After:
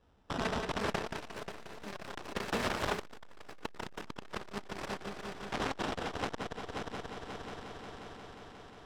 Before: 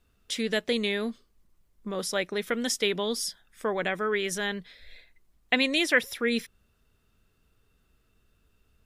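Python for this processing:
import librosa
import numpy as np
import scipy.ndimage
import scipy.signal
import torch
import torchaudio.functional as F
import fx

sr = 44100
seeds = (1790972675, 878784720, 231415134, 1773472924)

p1 = fx.tracing_dist(x, sr, depth_ms=0.23)
p2 = fx.dynamic_eq(p1, sr, hz=220.0, q=3.0, threshold_db=-44.0, ratio=4.0, max_db=-5)
p3 = fx.hum_notches(p2, sr, base_hz=60, count=8)
p4 = fx.sample_hold(p3, sr, seeds[0], rate_hz=2200.0, jitter_pct=0)
p5 = fx.highpass(p4, sr, hz=56.0, slope=6)
p6 = (np.mod(10.0 ** (26.0 / 20.0) * p5 + 1.0, 2.0) - 1.0) / 10.0 ** (26.0 / 20.0)
p7 = scipy.signal.sosfilt(scipy.signal.butter(2, 5300.0, 'lowpass', fs=sr, output='sos'), p6)
p8 = fx.rev_spring(p7, sr, rt60_s=1.9, pass_ms=(60,), chirp_ms=60, drr_db=12.5)
p9 = fx.rider(p8, sr, range_db=5, speed_s=0.5)
p10 = p9 + fx.echo_heads(p9, sr, ms=178, heads='first and third', feedback_pct=70, wet_db=-6.5, dry=0)
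p11 = fx.echo_pitch(p10, sr, ms=595, semitones=7, count=3, db_per_echo=-6.0)
y = fx.transformer_sat(p11, sr, knee_hz=410.0)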